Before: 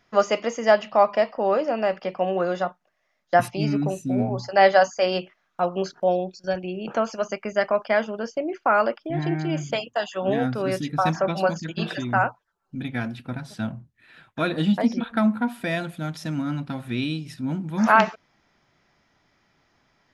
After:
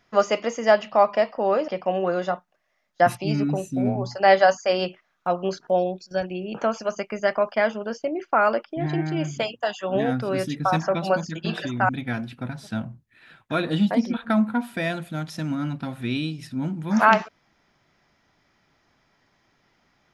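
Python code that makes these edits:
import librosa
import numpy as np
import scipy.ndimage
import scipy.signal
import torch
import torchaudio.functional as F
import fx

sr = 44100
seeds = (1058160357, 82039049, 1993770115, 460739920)

y = fx.edit(x, sr, fx.cut(start_s=1.68, length_s=0.33),
    fx.cut(start_s=12.22, length_s=0.54), tone=tone)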